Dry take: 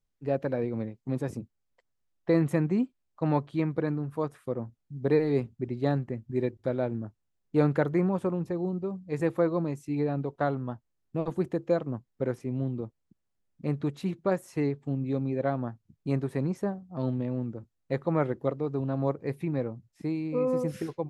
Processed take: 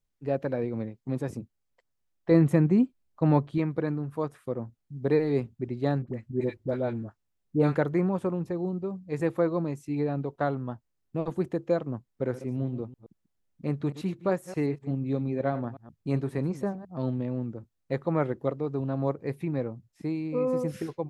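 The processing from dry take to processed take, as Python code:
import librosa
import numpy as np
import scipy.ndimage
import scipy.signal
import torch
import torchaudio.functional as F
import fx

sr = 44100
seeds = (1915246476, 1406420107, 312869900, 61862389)

y = fx.low_shelf(x, sr, hz=450.0, db=6.0, at=(2.31, 3.58))
y = fx.dispersion(y, sr, late='highs', ms=56.0, hz=730.0, at=(6.02, 7.75))
y = fx.reverse_delay(y, sr, ms=123, wet_db=-13.5, at=(12.08, 16.85))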